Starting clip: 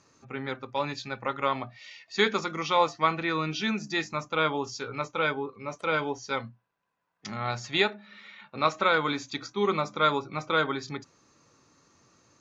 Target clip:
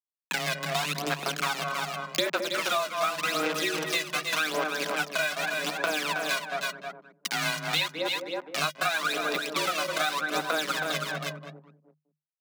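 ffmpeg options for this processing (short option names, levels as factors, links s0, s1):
-filter_complex "[0:a]lowshelf=f=92:g=7,acrusher=bits=4:mix=0:aa=0.000001,asplit=2[s0][s1];[s1]adelay=206,lowpass=f=860:p=1,volume=0.596,asplit=2[s2][s3];[s3]adelay=206,lowpass=f=860:p=1,volume=0.27,asplit=2[s4][s5];[s5]adelay=206,lowpass=f=860:p=1,volume=0.27,asplit=2[s6][s7];[s7]adelay=206,lowpass=f=860:p=1,volume=0.27[s8];[s2][s4][s6][s8]amix=inputs=4:normalize=0[s9];[s0][s9]amix=inputs=2:normalize=0,aphaser=in_gain=1:out_gain=1:delay=2.2:decay=0.7:speed=0.86:type=sinusoidal,equalizer=f=3100:w=0.38:g=8.5,asplit=2[s10][s11];[s11]aecho=0:1:319:0.335[s12];[s10][s12]amix=inputs=2:normalize=0,acompressor=threshold=0.0355:ratio=5,afreqshift=150,volume=1.33"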